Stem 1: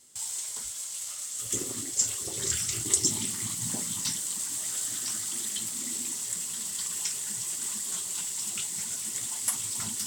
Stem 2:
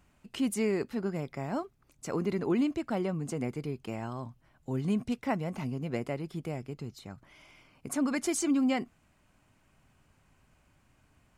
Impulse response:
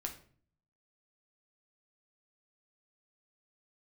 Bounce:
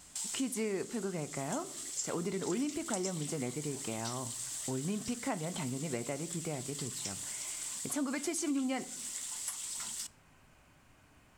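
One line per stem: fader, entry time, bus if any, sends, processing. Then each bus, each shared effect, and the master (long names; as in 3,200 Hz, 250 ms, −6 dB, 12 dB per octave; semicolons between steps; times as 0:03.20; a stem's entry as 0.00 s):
+1.5 dB, 0.00 s, send −19 dB, meter weighting curve A; automatic ducking −8 dB, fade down 0.90 s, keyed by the second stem
+2.5 dB, 0.00 s, send −5 dB, low-shelf EQ 170 Hz −6.5 dB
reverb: on, RT60 0.45 s, pre-delay 7 ms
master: downward compressor 2.5 to 1, threshold −37 dBFS, peak gain reduction 12.5 dB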